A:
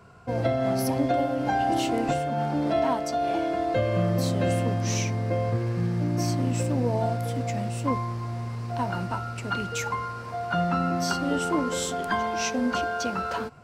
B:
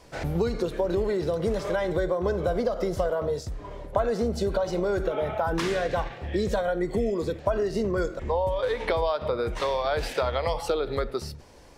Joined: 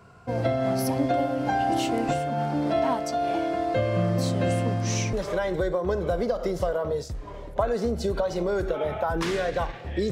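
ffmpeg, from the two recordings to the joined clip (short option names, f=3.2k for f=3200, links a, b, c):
-filter_complex "[0:a]asettb=1/sr,asplit=3[a][b][c];[a]atrim=end=3.754[d];[b]atrim=start=3.75:end=5.13,asetpts=PTS-STARTPTS,afade=t=in:d=0.004:c=qsin,afade=t=out:st=1.376:d=0.004:c=qsin,equalizer=f=13k:w=3.7:g=-12.5[e];[c]atrim=start=5.126[f];[d][e]acrossfade=d=0.004:c1=hsin:c2=qsin[g];[g][f]acrossfade=d=0.004:c1=qsin:c2=hsin,apad=whole_dur=10.11,atrim=end=10.11,atrim=end=5.132[h];[1:a]atrim=start=1.498:end=6.48[i];[h][i]acrossfade=d=0.004:c1=hsin:c2=hsin"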